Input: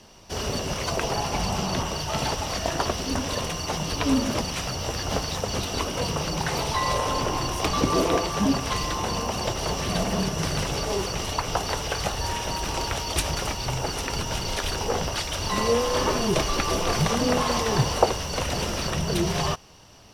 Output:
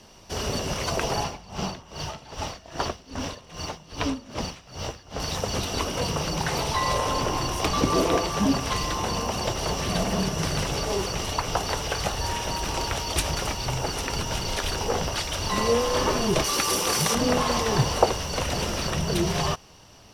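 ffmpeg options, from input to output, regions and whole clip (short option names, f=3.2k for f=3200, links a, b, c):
-filter_complex "[0:a]asettb=1/sr,asplit=3[a][b][c];[a]atrim=end=1.244[d];[b]atrim=start=1.24:end=5.2,asetpts=PTS-STARTPTS,afade=t=in:d=0.004:c=qsin,afade=t=out:st=3.956:d=0.004:c=qsin,acrossover=split=7000[e][f];[f]acompressor=threshold=-51dB:ratio=4:attack=1:release=60[g];[e][g]amix=inputs=2:normalize=0,aeval=exprs='sgn(val(0))*max(abs(val(0))-0.00251,0)':c=same,aeval=exprs='val(0)*pow(10,-21*(0.5-0.5*cos(2*PI*2.5*n/s))/20)':c=same[h];[c]atrim=start=5.196[i];[d][h]acrossfade=d=0.004:c1=hsin:c2=qsin[j];[j][i]acrossfade=d=0.004:c1=qsin:c2=hsin,asettb=1/sr,asplit=3[k][l][m];[k]atrim=end=16.444[n];[l]atrim=start=16.44:end=17.15,asetpts=PTS-STARTPTS,afade=t=in:d=0.004:c=qsin,afade=t=out:st=0.706:d=0.004:c=qsin,highpass=f=230:p=1,equalizer=f=11k:w=0.57:g=12.5,bandreject=f=670:w=7.4[o];[m]atrim=start=17.146[p];[n][o]acrossfade=d=0.004:c1=hsin:c2=qsin[q];[q][p]acrossfade=d=0.004:c1=qsin:c2=hsin"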